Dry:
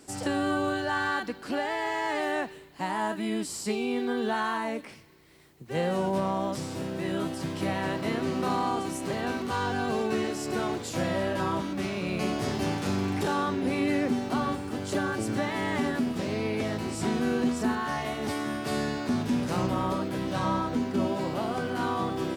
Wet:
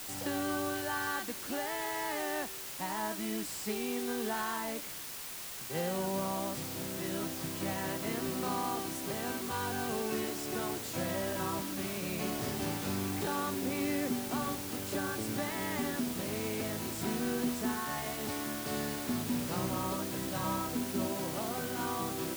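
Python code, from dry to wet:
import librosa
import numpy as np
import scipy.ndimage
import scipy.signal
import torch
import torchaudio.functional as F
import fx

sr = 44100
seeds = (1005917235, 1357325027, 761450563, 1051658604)

y = fx.quant_dither(x, sr, seeds[0], bits=6, dither='triangular')
y = F.gain(torch.from_numpy(y), -7.0).numpy()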